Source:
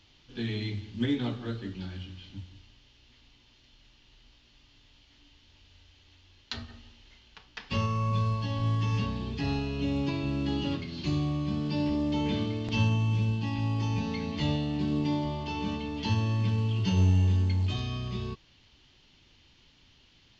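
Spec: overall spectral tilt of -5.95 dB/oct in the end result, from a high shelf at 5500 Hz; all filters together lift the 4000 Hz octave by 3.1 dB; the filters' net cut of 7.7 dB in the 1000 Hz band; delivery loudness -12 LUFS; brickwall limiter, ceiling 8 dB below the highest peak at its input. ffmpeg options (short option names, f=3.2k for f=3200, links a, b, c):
-af "equalizer=f=1k:t=o:g=-9,equalizer=f=4k:t=o:g=8,highshelf=f=5.5k:g=-9,volume=19.5dB,alimiter=limit=-2.5dB:level=0:latency=1"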